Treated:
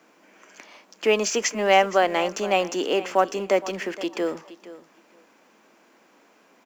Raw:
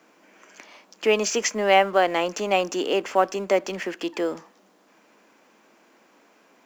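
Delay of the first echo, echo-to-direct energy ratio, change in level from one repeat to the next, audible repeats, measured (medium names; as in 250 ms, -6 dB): 468 ms, -16.5 dB, -16.5 dB, 2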